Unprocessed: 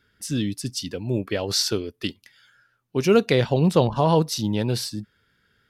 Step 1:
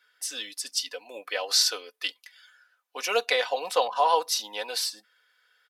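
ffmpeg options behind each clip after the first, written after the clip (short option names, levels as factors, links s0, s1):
-af "highpass=f=630:w=0.5412,highpass=f=630:w=1.3066,aecho=1:1:4:0.66"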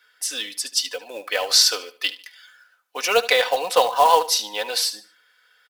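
-filter_complex "[0:a]acrossover=split=3500[s0][s1];[s0]acrusher=bits=4:mode=log:mix=0:aa=0.000001[s2];[s2][s1]amix=inputs=2:normalize=0,aecho=1:1:74|148|222:0.158|0.0475|0.0143,volume=2.11"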